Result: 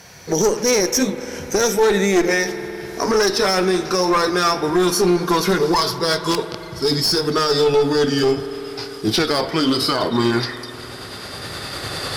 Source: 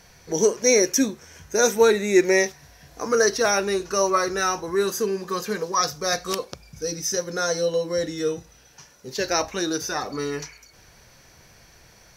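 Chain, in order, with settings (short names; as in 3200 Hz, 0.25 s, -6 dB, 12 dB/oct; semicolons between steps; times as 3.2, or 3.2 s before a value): gliding pitch shift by -4 st starting unshifted; recorder AGC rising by 8 dB/s; HPF 89 Hz; one-sided clip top -22.5 dBFS, bottom -11 dBFS; reverb RT60 4.7 s, pre-delay 50 ms, DRR 13.5 dB; maximiser +15.5 dB; gain -6.5 dB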